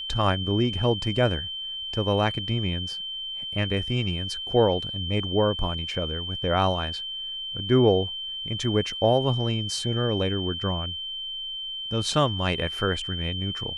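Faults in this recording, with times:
tone 3100 Hz -31 dBFS

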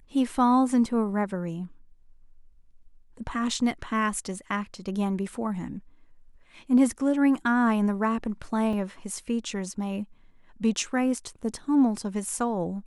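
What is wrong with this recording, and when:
8.73 gap 2.2 ms

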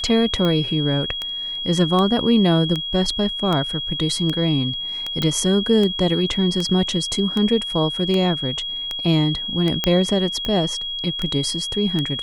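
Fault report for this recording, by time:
tick 78 rpm -11 dBFS
tone 3300 Hz -25 dBFS
5.22 pop -9 dBFS
9.84 pop -4 dBFS

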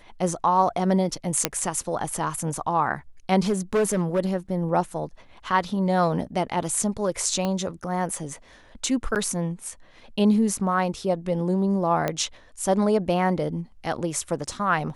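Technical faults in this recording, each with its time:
1.45 pop -2 dBFS
3.48–4.2 clipped -17.5 dBFS
7.45 pop -14 dBFS
9.15–9.16 gap 8.5 ms
12.08 pop -11 dBFS

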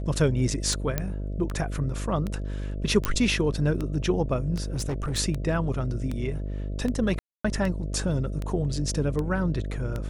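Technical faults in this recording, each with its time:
buzz 50 Hz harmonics 13 -31 dBFS
tick 78 rpm
0.98 pop -11 dBFS
3.05 pop -9 dBFS
4.74–5.19 clipped -24.5 dBFS
7.19–7.45 gap 0.255 s

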